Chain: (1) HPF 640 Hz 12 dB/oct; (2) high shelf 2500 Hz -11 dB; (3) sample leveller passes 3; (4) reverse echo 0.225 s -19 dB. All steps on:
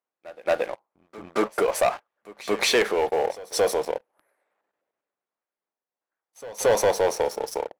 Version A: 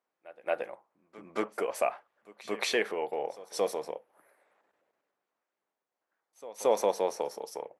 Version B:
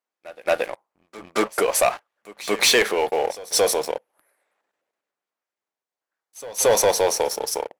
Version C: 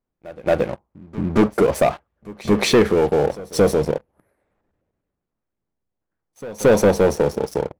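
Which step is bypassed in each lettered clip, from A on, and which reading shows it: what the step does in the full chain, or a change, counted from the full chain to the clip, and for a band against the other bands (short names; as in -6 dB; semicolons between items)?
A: 3, crest factor change +8.0 dB; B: 2, 8 kHz band +7.5 dB; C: 1, 125 Hz band +17.5 dB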